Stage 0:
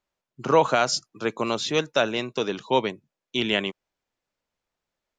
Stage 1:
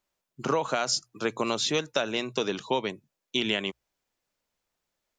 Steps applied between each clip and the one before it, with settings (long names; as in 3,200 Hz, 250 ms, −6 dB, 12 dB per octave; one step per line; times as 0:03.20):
high-shelf EQ 5,700 Hz +8 dB
mains-hum notches 60/120 Hz
downward compressor 12 to 1, threshold −22 dBFS, peak gain reduction 11 dB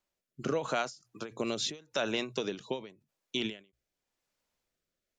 rotating-speaker cabinet horn 0.85 Hz
brickwall limiter −20 dBFS, peak gain reduction 7.5 dB
every ending faded ahead of time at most 170 dB per second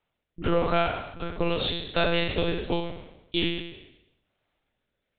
peak hold with a decay on every bin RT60 0.89 s
one-pitch LPC vocoder at 8 kHz 170 Hz
level +6 dB